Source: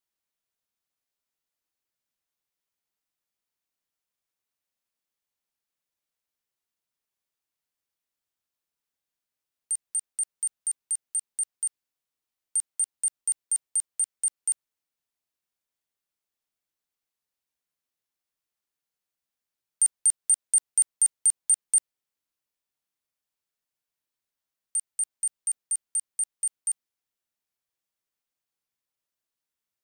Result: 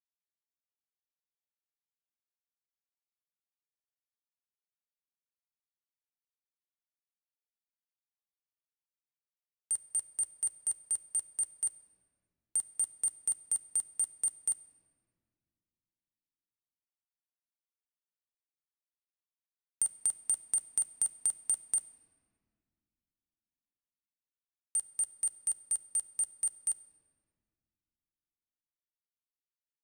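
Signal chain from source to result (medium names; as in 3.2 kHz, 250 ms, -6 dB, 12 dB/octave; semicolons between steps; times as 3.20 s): tilt shelf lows +5 dB, about 1.1 kHz; compression 20:1, threshold -29 dBFS, peak gain reduction 8 dB; bit crusher 9-bit; reverberation RT60 2.2 s, pre-delay 3 ms, DRR 10.5 dB; trim +2 dB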